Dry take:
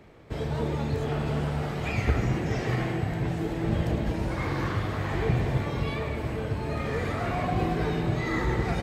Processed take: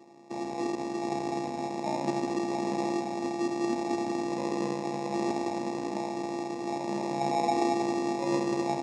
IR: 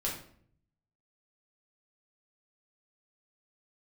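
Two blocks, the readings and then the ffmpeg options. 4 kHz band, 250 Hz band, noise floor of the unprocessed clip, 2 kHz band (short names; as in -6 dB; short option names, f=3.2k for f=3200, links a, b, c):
-2.0 dB, +0.5 dB, -33 dBFS, -8.5 dB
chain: -filter_complex "[0:a]asplit=2[a][b];[1:a]atrim=start_sample=2205[c];[b][c]afir=irnorm=-1:irlink=0,volume=-22dB[d];[a][d]amix=inputs=2:normalize=0,afftfilt=real='hypot(re,im)*cos(PI*b)':imag='0':win_size=512:overlap=0.75,acrusher=samples=29:mix=1:aa=0.000001,highpass=f=140:w=0.5412,highpass=f=140:w=1.3066,equalizer=f=240:t=q:w=4:g=9,equalizer=f=840:t=q:w=4:g=6,equalizer=f=1.3k:t=q:w=4:g=-10,equalizer=f=2.2k:t=q:w=4:g=-8,equalizer=f=3.5k:t=q:w=4:g=-10,lowpass=f=7k:w=0.5412,lowpass=f=7k:w=1.3066,volume=2.5dB"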